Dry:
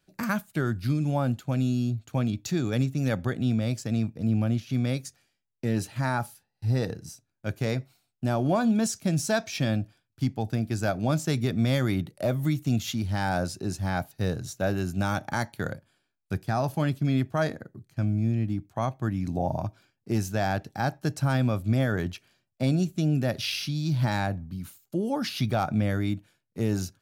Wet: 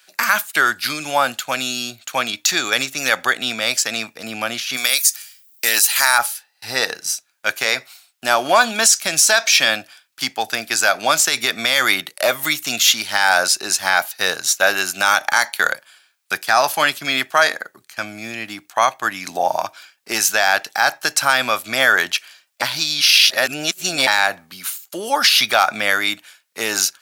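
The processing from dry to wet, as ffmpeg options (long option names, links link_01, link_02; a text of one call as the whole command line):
ffmpeg -i in.wav -filter_complex "[0:a]asplit=3[link_01][link_02][link_03];[link_01]afade=type=out:start_time=4.76:duration=0.02[link_04];[link_02]aemphasis=mode=production:type=riaa,afade=type=in:start_time=4.76:duration=0.02,afade=type=out:start_time=6.17:duration=0.02[link_05];[link_03]afade=type=in:start_time=6.17:duration=0.02[link_06];[link_04][link_05][link_06]amix=inputs=3:normalize=0,asplit=3[link_07][link_08][link_09];[link_07]atrim=end=22.622[link_10];[link_08]atrim=start=22.618:end=24.072,asetpts=PTS-STARTPTS,areverse[link_11];[link_09]atrim=start=24.068[link_12];[link_10][link_11]acrossfade=duration=0.004:curve1=hsin:curve2=hsin[link_13];[link_13][link_12]acrossfade=duration=0.004:curve1=hsin:curve2=hsin,highpass=1300,alimiter=level_in=24dB:limit=-1dB:release=50:level=0:latency=1,volume=-1dB" out.wav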